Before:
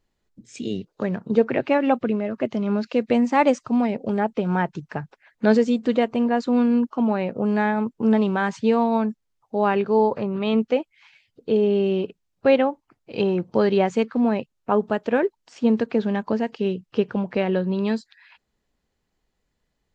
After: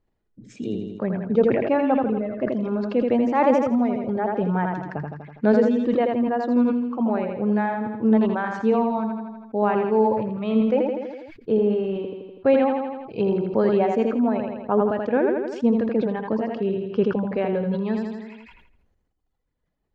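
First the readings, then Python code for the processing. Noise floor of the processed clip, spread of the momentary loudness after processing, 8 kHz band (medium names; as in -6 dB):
-73 dBFS, 10 LU, no reading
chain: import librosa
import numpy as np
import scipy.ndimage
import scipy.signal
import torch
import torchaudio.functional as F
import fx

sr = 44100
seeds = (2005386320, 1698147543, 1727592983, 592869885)

y = fx.lowpass(x, sr, hz=1100.0, slope=6)
y = fx.dereverb_blind(y, sr, rt60_s=1.6)
y = fx.echo_feedback(y, sr, ms=82, feedback_pct=49, wet_db=-6)
y = fx.sustainer(y, sr, db_per_s=45.0)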